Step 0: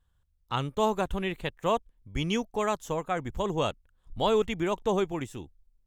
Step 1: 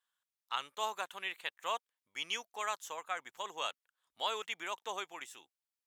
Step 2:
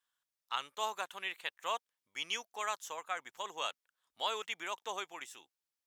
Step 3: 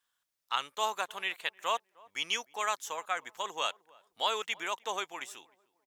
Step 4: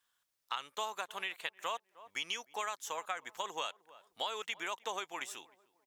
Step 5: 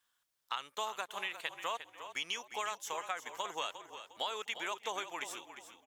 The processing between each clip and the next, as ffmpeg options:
-af "highpass=1.2k,volume=-2dB"
-af "equalizer=f=5.5k:t=o:w=0.41:g=2.5"
-filter_complex "[0:a]asplit=2[a][b];[b]adelay=307,lowpass=f=1k:p=1,volume=-22.5dB,asplit=2[c][d];[d]adelay=307,lowpass=f=1k:p=1,volume=0.37,asplit=2[e][f];[f]adelay=307,lowpass=f=1k:p=1,volume=0.37[g];[a][c][e][g]amix=inputs=4:normalize=0,volume=5dB"
-af "acompressor=threshold=-36dB:ratio=6,volume=1.5dB"
-filter_complex "[0:a]asplit=5[a][b][c][d][e];[b]adelay=354,afreqshift=-40,volume=-11dB[f];[c]adelay=708,afreqshift=-80,volume=-20.4dB[g];[d]adelay=1062,afreqshift=-120,volume=-29.7dB[h];[e]adelay=1416,afreqshift=-160,volume=-39.1dB[i];[a][f][g][h][i]amix=inputs=5:normalize=0"

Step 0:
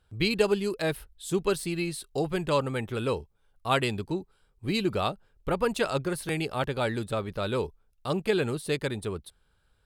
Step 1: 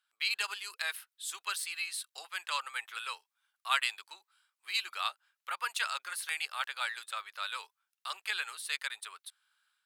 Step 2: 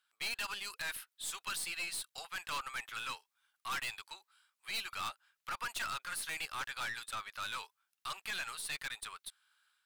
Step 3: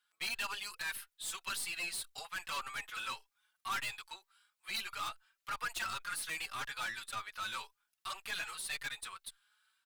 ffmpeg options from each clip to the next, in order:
-af "highpass=f=1.2k:w=0.5412,highpass=f=1.2k:w=1.3066,dynaudnorm=f=180:g=3:m=6dB,volume=-5.5dB"
-af "aeval=exprs='(tanh(70.8*val(0)+0.3)-tanh(0.3))/70.8':c=same,volume=2.5dB"
-filter_complex "[0:a]asplit=2[a][b];[b]adelay=4.4,afreqshift=1.8[c];[a][c]amix=inputs=2:normalize=1,volume=3dB"

